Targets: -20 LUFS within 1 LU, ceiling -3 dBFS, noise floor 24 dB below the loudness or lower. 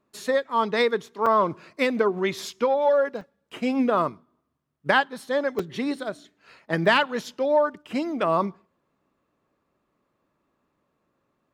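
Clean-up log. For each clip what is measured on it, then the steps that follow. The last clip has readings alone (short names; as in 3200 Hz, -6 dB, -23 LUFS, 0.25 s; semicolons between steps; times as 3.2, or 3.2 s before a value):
dropouts 3; longest dropout 4.0 ms; loudness -24.5 LUFS; peak -6.0 dBFS; loudness target -20.0 LUFS
-> interpolate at 1.26/3.21/5.59, 4 ms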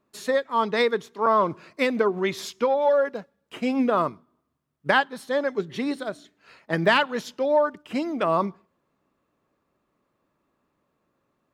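dropouts 0; loudness -24.5 LUFS; peak -6.0 dBFS; loudness target -20.0 LUFS
-> gain +4.5 dB; limiter -3 dBFS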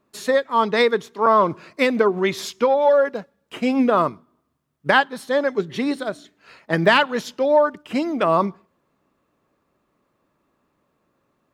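loudness -20.0 LUFS; peak -3.0 dBFS; noise floor -71 dBFS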